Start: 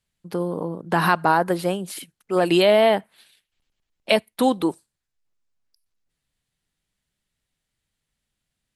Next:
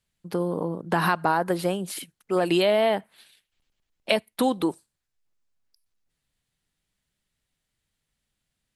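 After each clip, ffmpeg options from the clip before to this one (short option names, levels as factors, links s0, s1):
-af "acompressor=threshold=0.0891:ratio=2"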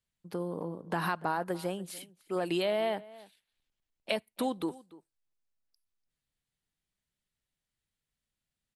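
-filter_complex "[0:a]asplit=2[s0][s1];[s1]adelay=291.5,volume=0.1,highshelf=f=4000:g=-6.56[s2];[s0][s2]amix=inputs=2:normalize=0,volume=0.355"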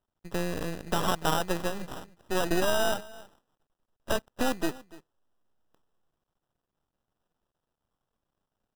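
-af "acrusher=samples=20:mix=1:aa=0.000001,aeval=exprs='max(val(0),0)':c=same,volume=2.66"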